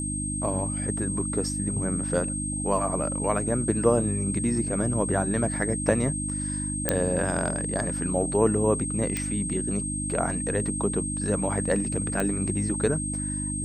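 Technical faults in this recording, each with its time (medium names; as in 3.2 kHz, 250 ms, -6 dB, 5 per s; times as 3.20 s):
hum 50 Hz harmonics 6 -32 dBFS
whine 8.4 kHz -31 dBFS
6.89 s: pop -6 dBFS
9.17 s: pop -14 dBFS
12.20 s: pop -14 dBFS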